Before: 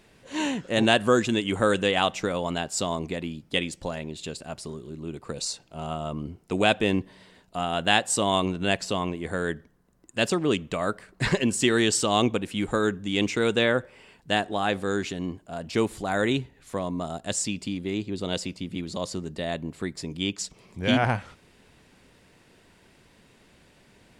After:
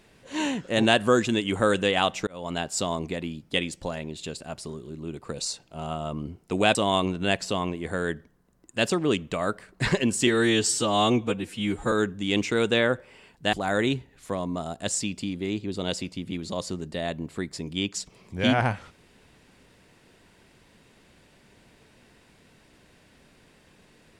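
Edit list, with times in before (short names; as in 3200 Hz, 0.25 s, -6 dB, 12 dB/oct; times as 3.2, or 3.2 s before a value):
2.27–2.59 fade in
6.75–8.15 cut
11.67–12.77 stretch 1.5×
14.38–15.97 cut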